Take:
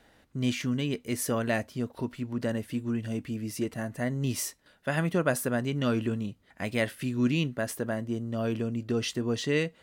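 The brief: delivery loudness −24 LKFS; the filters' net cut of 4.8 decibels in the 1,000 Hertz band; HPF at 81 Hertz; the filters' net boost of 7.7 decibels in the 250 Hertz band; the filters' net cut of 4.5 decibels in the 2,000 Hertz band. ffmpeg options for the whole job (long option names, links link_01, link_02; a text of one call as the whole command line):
ffmpeg -i in.wav -af "highpass=81,equalizer=frequency=250:width_type=o:gain=9,equalizer=frequency=1000:width_type=o:gain=-7.5,equalizer=frequency=2000:width_type=o:gain=-3.5,volume=1.5dB" out.wav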